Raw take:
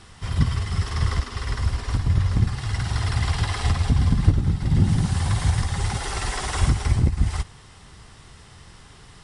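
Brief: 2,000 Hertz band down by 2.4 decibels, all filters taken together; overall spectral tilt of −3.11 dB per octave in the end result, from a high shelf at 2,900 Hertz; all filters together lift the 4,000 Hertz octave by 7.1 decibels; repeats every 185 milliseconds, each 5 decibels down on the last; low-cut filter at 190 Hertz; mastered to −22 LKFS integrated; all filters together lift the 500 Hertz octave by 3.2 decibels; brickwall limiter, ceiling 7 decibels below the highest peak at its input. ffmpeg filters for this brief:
ffmpeg -i in.wav -af "highpass=190,equalizer=frequency=500:width_type=o:gain=4.5,equalizer=frequency=2000:width_type=o:gain=-7,highshelf=frequency=2900:gain=7,equalizer=frequency=4000:width_type=o:gain=5,alimiter=limit=-18dB:level=0:latency=1,aecho=1:1:185|370|555|740|925|1110|1295:0.562|0.315|0.176|0.0988|0.0553|0.031|0.0173,volume=5dB" out.wav

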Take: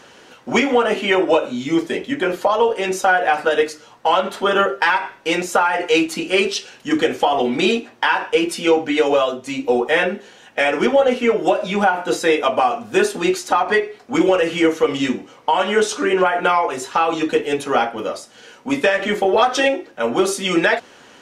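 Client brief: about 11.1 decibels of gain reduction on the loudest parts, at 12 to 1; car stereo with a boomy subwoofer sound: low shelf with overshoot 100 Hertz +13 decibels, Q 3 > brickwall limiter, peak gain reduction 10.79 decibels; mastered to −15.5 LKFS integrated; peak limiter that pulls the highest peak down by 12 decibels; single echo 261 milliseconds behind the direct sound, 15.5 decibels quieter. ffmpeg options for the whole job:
ffmpeg -i in.wav -af "acompressor=threshold=-22dB:ratio=12,alimiter=limit=-18.5dB:level=0:latency=1,lowshelf=frequency=100:width_type=q:width=3:gain=13,aecho=1:1:261:0.168,volume=21dB,alimiter=limit=-7.5dB:level=0:latency=1" out.wav

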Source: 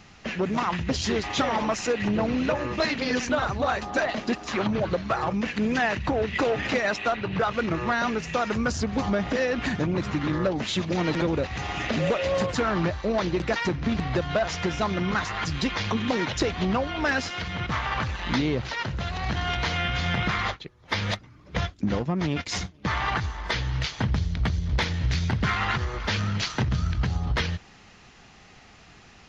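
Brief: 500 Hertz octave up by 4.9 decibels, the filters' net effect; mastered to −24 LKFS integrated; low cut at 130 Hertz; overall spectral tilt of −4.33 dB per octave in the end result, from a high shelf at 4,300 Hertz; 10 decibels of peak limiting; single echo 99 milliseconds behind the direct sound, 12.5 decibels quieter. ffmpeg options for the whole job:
ffmpeg -i in.wav -af "highpass=130,equalizer=frequency=500:width_type=o:gain=6,highshelf=frequency=4300:gain=-7,alimiter=limit=-18dB:level=0:latency=1,aecho=1:1:99:0.237,volume=4dB" out.wav

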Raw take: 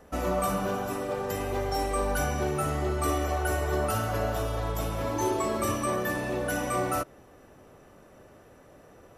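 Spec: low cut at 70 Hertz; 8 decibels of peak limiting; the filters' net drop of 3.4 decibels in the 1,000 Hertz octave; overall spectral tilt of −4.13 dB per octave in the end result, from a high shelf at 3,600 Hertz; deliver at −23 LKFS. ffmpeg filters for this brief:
ffmpeg -i in.wav -af "highpass=70,equalizer=frequency=1000:width_type=o:gain=-5.5,highshelf=frequency=3600:gain=7.5,volume=9.5dB,alimiter=limit=-14dB:level=0:latency=1" out.wav

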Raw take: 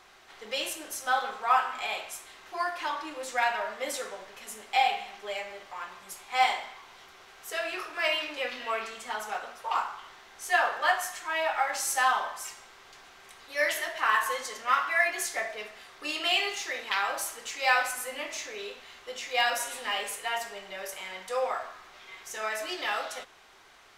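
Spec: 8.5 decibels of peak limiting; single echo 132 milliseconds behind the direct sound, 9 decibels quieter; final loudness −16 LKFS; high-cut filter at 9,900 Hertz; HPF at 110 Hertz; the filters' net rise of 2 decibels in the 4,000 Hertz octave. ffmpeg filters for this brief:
ffmpeg -i in.wav -af "highpass=110,lowpass=9900,equalizer=frequency=4000:width_type=o:gain=3,alimiter=limit=-17.5dB:level=0:latency=1,aecho=1:1:132:0.355,volume=14.5dB" out.wav

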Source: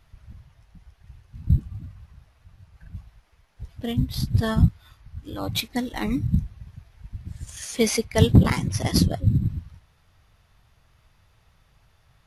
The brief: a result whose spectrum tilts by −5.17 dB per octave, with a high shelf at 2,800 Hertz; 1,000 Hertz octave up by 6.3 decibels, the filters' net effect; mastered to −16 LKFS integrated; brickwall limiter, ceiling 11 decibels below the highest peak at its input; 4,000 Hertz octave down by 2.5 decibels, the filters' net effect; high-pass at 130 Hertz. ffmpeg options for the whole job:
ffmpeg -i in.wav -af "highpass=130,equalizer=frequency=1000:width_type=o:gain=8,highshelf=frequency=2800:gain=3.5,equalizer=frequency=4000:width_type=o:gain=-6.5,volume=11.5dB,alimiter=limit=-2dB:level=0:latency=1" out.wav

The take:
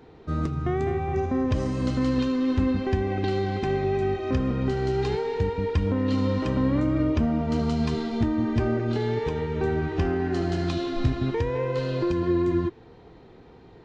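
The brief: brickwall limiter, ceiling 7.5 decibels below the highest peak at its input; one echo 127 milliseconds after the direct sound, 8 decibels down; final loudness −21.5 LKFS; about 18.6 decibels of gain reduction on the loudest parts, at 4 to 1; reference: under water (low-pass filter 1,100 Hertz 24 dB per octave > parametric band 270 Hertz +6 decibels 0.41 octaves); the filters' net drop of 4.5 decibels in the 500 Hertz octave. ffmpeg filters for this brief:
ffmpeg -i in.wav -af "equalizer=frequency=500:width_type=o:gain=-7.5,acompressor=threshold=-43dB:ratio=4,alimiter=level_in=11.5dB:limit=-24dB:level=0:latency=1,volume=-11.5dB,lowpass=frequency=1100:width=0.5412,lowpass=frequency=1100:width=1.3066,equalizer=frequency=270:width_type=o:width=0.41:gain=6,aecho=1:1:127:0.398,volume=20.5dB" out.wav

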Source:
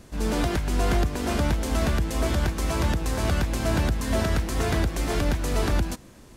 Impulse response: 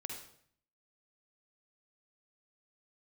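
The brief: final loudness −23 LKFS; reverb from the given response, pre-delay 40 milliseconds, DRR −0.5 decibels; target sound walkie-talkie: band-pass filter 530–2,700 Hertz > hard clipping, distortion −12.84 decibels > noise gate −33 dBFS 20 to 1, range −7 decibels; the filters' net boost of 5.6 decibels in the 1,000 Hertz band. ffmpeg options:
-filter_complex "[0:a]equalizer=frequency=1000:width_type=o:gain=8,asplit=2[link_01][link_02];[1:a]atrim=start_sample=2205,adelay=40[link_03];[link_02][link_03]afir=irnorm=-1:irlink=0,volume=2dB[link_04];[link_01][link_04]amix=inputs=2:normalize=0,highpass=530,lowpass=2700,asoftclip=type=hard:threshold=-22.5dB,agate=range=-7dB:threshold=-33dB:ratio=20,volume=4.5dB"

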